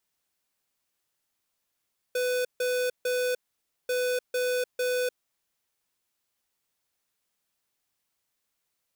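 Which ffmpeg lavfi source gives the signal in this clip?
-f lavfi -i "aevalsrc='0.0447*(2*lt(mod(499*t,1),0.5)-1)*clip(min(mod(mod(t,1.74),0.45),0.3-mod(mod(t,1.74),0.45))/0.005,0,1)*lt(mod(t,1.74),1.35)':d=3.48:s=44100"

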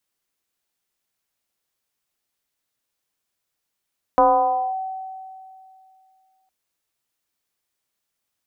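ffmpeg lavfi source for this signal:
-f lavfi -i "aevalsrc='0.316*pow(10,-3*t/2.52)*sin(2*PI*759*t+1.4*clip(1-t/0.57,0,1)*sin(2*PI*0.32*759*t))':d=2.31:s=44100"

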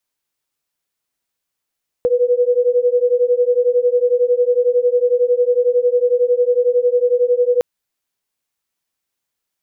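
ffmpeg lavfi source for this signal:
-f lavfi -i "aevalsrc='0.178*(sin(2*PI*485*t)+sin(2*PI*496*t))':d=5.56:s=44100"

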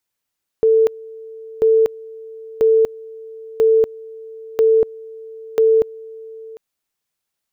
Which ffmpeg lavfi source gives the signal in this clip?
-f lavfi -i "aevalsrc='pow(10,(-9.5-22.5*gte(mod(t,0.99),0.24))/20)*sin(2*PI*445*t)':d=5.94:s=44100"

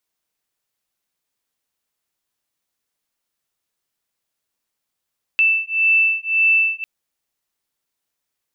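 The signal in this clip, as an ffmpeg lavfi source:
-f lavfi -i "aevalsrc='0.141*(sin(2*PI*2650*t)+sin(2*PI*2651.8*t))':d=1.45:s=44100"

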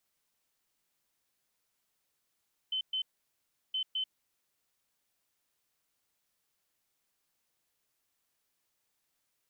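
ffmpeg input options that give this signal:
-f lavfi -i "aevalsrc='0.0316*sin(2*PI*3060*t)*clip(min(mod(mod(t,1.02),0.21),0.09-mod(mod(t,1.02),0.21))/0.005,0,1)*lt(mod(t,1.02),0.42)':d=2.04:s=44100"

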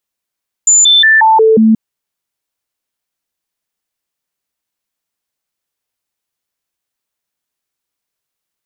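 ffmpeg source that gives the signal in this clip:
-f lavfi -i "aevalsrc='0.631*clip(min(mod(t,0.18),0.18-mod(t,0.18))/0.005,0,1)*sin(2*PI*7070*pow(2,-floor(t/0.18)/1)*mod(t,0.18))':d=1.08:s=44100"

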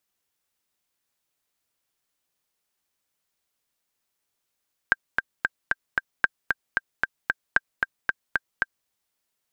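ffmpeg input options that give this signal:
-f lavfi -i "aevalsrc='pow(10,(-4.5-4*gte(mod(t,5*60/227),60/227))/20)*sin(2*PI*1580*mod(t,60/227))*exp(-6.91*mod(t,60/227)/0.03)':d=3.96:s=44100"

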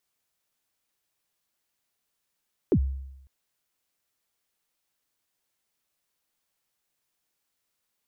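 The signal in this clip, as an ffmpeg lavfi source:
-f lavfi -i "aevalsrc='0.168*pow(10,-3*t/0.89)*sin(2*PI*(460*0.07/log(67/460)*(exp(log(67/460)*min(t,0.07)/0.07)-1)+67*max(t-0.07,0)))':d=0.55:s=44100"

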